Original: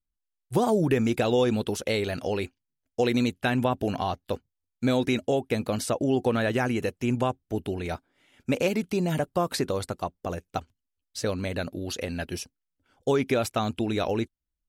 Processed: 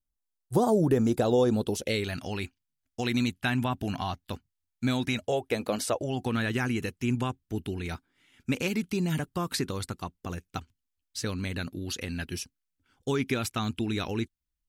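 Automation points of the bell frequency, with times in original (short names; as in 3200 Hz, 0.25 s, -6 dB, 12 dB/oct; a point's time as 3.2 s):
bell -13.5 dB 0.96 oct
1.6 s 2400 Hz
2.1 s 500 Hz
5.01 s 500 Hz
5.74 s 98 Hz
6.31 s 600 Hz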